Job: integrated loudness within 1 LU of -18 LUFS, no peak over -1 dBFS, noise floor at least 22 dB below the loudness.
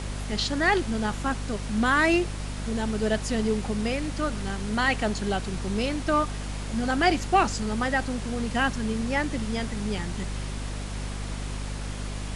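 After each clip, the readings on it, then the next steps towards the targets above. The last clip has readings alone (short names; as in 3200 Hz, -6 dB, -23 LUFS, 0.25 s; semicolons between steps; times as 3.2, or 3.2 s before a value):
hum 50 Hz; harmonics up to 250 Hz; hum level -31 dBFS; noise floor -33 dBFS; noise floor target -49 dBFS; loudness -27.0 LUFS; peak -9.5 dBFS; loudness target -18.0 LUFS
-> notches 50/100/150/200/250 Hz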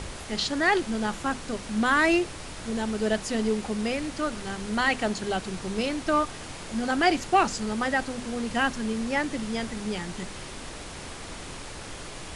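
hum none; noise floor -40 dBFS; noise floor target -49 dBFS
-> noise print and reduce 9 dB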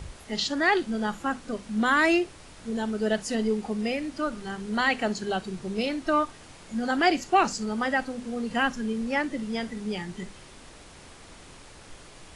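noise floor -49 dBFS; noise floor target -50 dBFS
-> noise print and reduce 6 dB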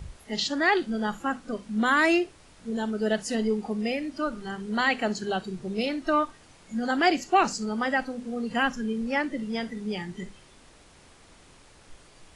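noise floor -55 dBFS; loudness -27.5 LUFS; peak -9.5 dBFS; loudness target -18.0 LUFS
-> gain +9.5 dB; limiter -1 dBFS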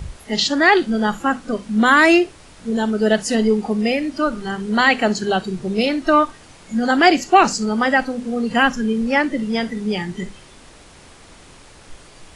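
loudness -18.0 LUFS; peak -1.0 dBFS; noise floor -45 dBFS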